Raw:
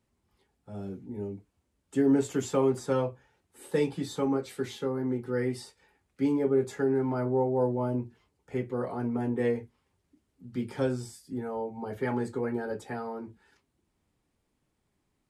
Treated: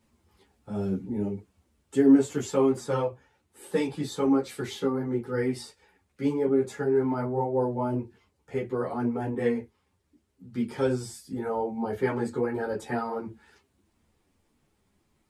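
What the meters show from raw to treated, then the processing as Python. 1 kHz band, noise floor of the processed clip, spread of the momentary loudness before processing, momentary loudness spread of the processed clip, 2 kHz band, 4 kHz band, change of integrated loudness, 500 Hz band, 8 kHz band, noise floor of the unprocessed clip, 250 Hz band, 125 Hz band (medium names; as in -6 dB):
+3.5 dB, -73 dBFS, 13 LU, 10 LU, +2.5 dB, +3.0 dB, +2.5 dB, +2.0 dB, +2.0 dB, -78 dBFS, +3.5 dB, +0.5 dB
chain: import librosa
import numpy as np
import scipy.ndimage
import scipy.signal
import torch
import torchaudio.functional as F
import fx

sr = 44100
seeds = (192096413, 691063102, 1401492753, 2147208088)

p1 = fx.rider(x, sr, range_db=10, speed_s=0.5)
p2 = x + F.gain(torch.from_numpy(p1), -1.0).numpy()
y = fx.ensemble(p2, sr)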